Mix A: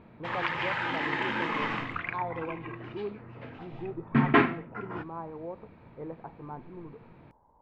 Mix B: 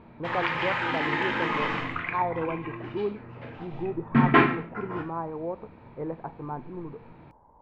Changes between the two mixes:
speech +6.5 dB; reverb: on, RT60 0.50 s

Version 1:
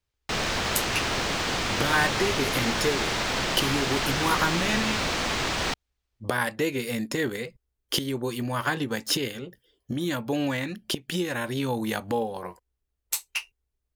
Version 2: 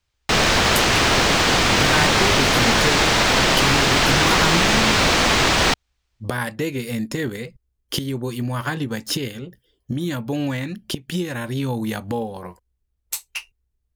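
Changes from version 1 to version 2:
speech: add tone controls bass +8 dB, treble +1 dB; background +10.5 dB

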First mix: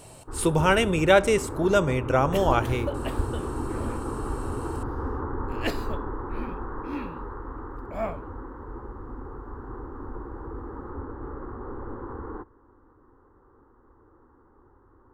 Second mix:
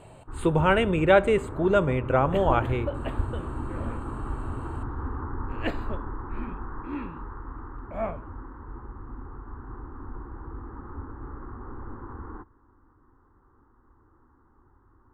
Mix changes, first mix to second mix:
first sound: add bell 500 Hz -11.5 dB 1.1 oct; master: add running mean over 8 samples

